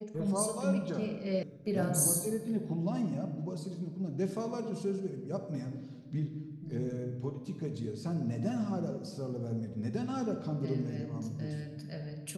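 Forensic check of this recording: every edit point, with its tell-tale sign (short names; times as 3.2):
1.43 sound cut off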